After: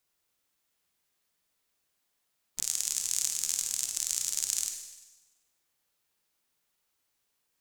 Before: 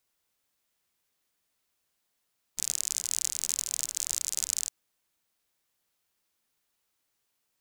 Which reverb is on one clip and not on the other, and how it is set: Schroeder reverb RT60 1.1 s, DRR 5 dB; gain -1 dB

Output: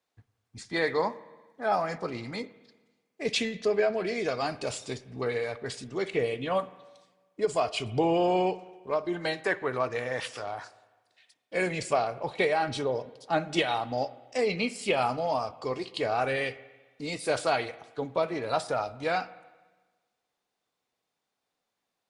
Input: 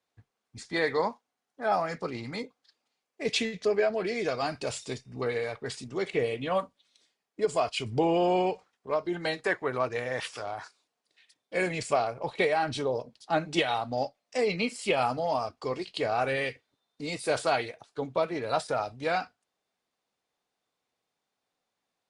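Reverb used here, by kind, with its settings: spring tank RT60 1.3 s, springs 49/54 ms, chirp 65 ms, DRR 16.5 dB

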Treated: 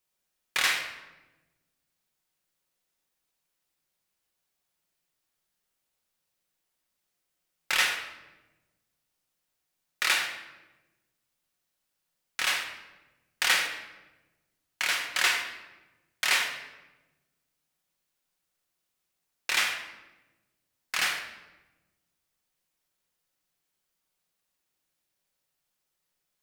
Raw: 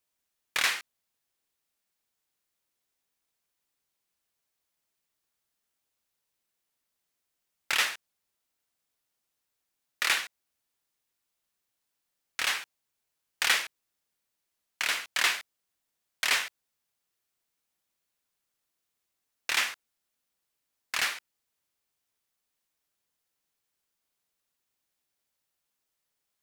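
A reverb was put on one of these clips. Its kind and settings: shoebox room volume 580 m³, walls mixed, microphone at 1 m

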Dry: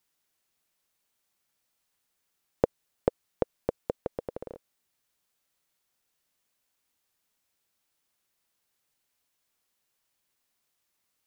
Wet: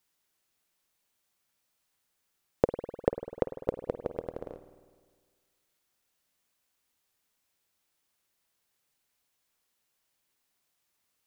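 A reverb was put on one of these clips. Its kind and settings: spring tank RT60 1.7 s, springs 50 ms, chirp 45 ms, DRR 9.5 dB

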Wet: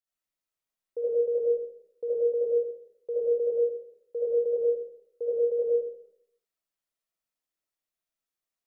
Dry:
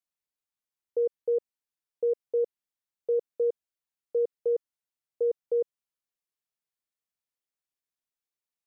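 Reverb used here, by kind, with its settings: digital reverb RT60 0.69 s, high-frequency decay 0.35×, pre-delay 35 ms, DRR -8 dB; gain -6 dB

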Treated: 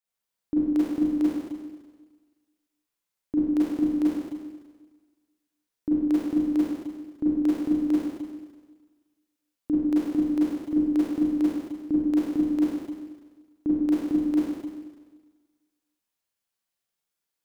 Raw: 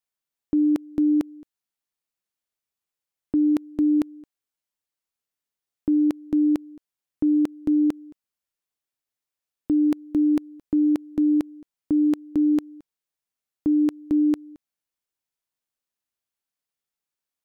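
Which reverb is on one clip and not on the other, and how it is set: Schroeder reverb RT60 1.4 s, combs from 33 ms, DRR -8.5 dB; gain -5.5 dB

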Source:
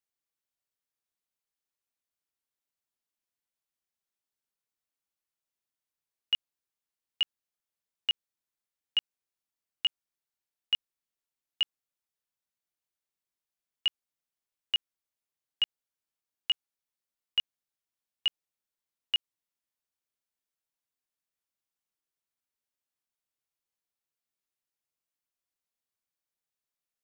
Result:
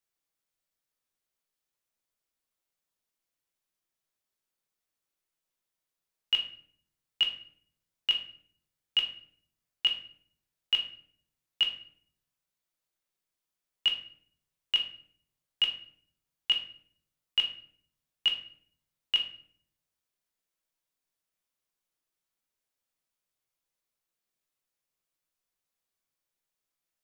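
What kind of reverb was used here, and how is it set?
shoebox room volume 86 m³, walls mixed, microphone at 0.65 m; gain +1.5 dB

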